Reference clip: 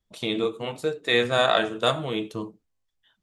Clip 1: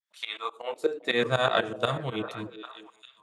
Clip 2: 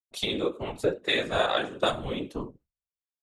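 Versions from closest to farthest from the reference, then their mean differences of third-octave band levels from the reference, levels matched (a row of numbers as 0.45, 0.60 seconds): 2, 1; 3.5, 5.5 decibels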